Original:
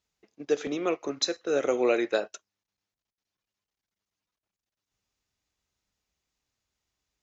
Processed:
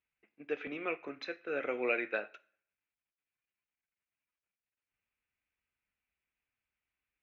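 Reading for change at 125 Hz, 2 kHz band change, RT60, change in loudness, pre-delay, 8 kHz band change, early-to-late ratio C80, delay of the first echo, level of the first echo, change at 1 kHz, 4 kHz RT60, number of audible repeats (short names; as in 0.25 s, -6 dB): n/a, -0.5 dB, 0.55 s, -8.5 dB, 3 ms, n/a, 24.5 dB, none, none, -7.5 dB, 0.50 s, none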